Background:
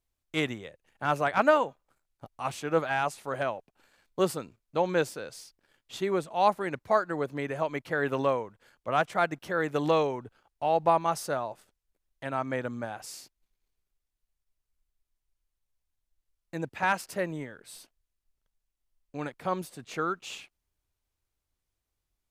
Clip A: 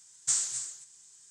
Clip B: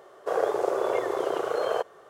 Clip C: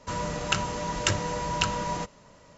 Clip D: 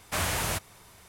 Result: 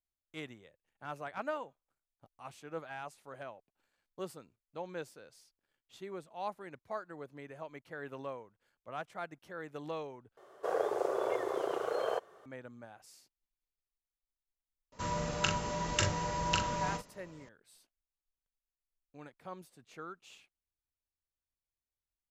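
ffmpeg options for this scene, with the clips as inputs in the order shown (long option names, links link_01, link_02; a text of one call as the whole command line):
ffmpeg -i bed.wav -i cue0.wav -i cue1.wav -i cue2.wav -filter_complex "[0:a]volume=-15.5dB[link_01];[3:a]asplit=2[link_02][link_03];[link_03]adelay=42,volume=-5.5dB[link_04];[link_02][link_04]amix=inputs=2:normalize=0[link_05];[link_01]asplit=2[link_06][link_07];[link_06]atrim=end=10.374[link_08];[2:a]atrim=end=2.09,asetpts=PTS-STARTPTS,volume=-7dB[link_09];[link_07]atrim=start=12.456[link_10];[link_05]atrim=end=2.57,asetpts=PTS-STARTPTS,volume=-6dB,afade=type=in:duration=0.004:curve=hsin,afade=type=out:start_time=2.566:duration=0.004:curve=hsin,adelay=657972S[link_11];[link_08][link_09]acrossfade=duration=0.004:curve1=hsin:curve2=hsin[link_12];[link_12][link_10]acrossfade=duration=0.004:curve1=hsin:curve2=hsin[link_13];[link_13][link_11]amix=inputs=2:normalize=0" out.wav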